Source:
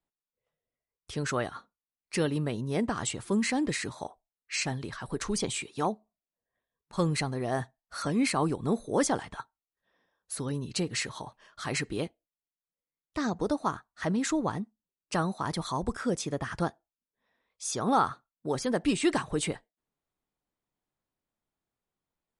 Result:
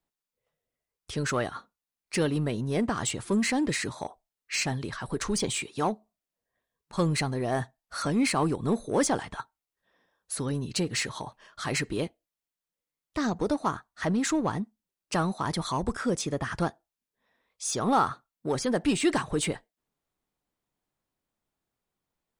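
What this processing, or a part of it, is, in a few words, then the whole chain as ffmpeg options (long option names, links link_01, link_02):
parallel distortion: -filter_complex "[0:a]asplit=2[link_01][link_02];[link_02]asoftclip=type=hard:threshold=-31dB,volume=-6.5dB[link_03];[link_01][link_03]amix=inputs=2:normalize=0"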